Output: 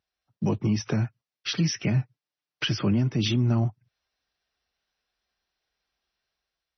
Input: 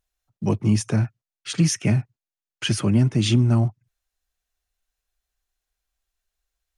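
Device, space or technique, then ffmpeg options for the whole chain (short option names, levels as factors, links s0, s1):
low-bitrate web radio: -filter_complex "[0:a]highpass=100,asettb=1/sr,asplit=3[s0][s1][s2];[s0]atrim=end=1.944[s3];[s1]atrim=start=1.94:end=2.77,asetpts=PTS-STARTPTS,afade=t=in:d=0.004:c=qsin,afade=t=out:st=0.826:d=0.004:c=qsin,aecho=1:1:6.7:0.66,atrim=end_sample=36603[s4];[s2]atrim=start=2.766[s5];[s3][s4]acrossfade=d=0.004:c1=hsin:c2=qsin[s6];[s6][s5]acrossfade=d=0.004:c1=qsin:c2=hsin,dynaudnorm=f=100:g=9:m=1.88,alimiter=limit=0.168:level=0:latency=1:release=340" -ar 24000 -c:a libmp3lame -b:a 24k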